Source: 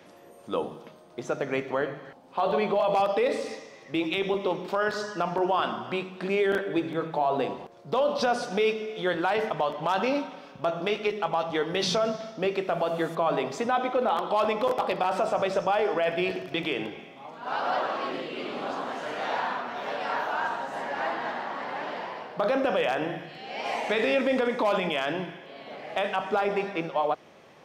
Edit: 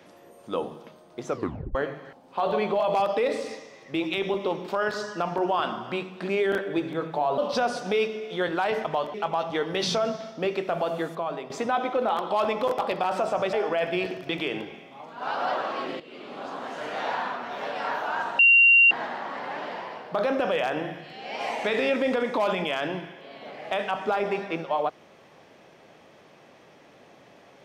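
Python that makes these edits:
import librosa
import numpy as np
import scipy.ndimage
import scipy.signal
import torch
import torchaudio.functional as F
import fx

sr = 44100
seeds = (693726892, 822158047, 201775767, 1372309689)

y = fx.edit(x, sr, fx.tape_stop(start_s=1.29, length_s=0.46),
    fx.cut(start_s=7.38, length_s=0.66),
    fx.cut(start_s=9.8, length_s=1.34),
    fx.fade_out_to(start_s=12.87, length_s=0.63, floor_db=-11.0),
    fx.cut(start_s=15.53, length_s=0.25),
    fx.fade_in_from(start_s=18.25, length_s=0.87, floor_db=-12.5),
    fx.bleep(start_s=20.64, length_s=0.52, hz=2760.0, db=-12.5), tone=tone)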